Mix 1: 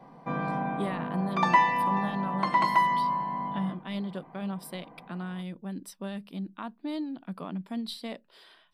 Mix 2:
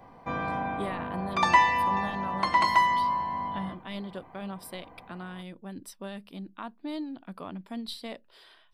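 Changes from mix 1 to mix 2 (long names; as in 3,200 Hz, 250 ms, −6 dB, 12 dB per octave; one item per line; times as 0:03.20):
background: add high-shelf EQ 3,000 Hz +10 dB
master: add low shelf with overshoot 120 Hz +9 dB, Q 3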